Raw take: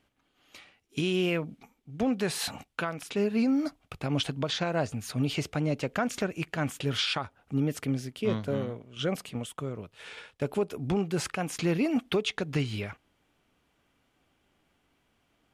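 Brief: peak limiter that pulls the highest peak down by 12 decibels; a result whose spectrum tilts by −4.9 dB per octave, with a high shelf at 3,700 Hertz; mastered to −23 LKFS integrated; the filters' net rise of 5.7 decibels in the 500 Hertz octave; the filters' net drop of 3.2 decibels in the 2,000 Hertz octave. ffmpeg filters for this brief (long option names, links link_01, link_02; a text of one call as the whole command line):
ffmpeg -i in.wav -af "equalizer=frequency=500:width_type=o:gain=7.5,equalizer=frequency=2000:width_type=o:gain=-6,highshelf=frequency=3700:gain=3,volume=11dB,alimiter=limit=-13.5dB:level=0:latency=1" out.wav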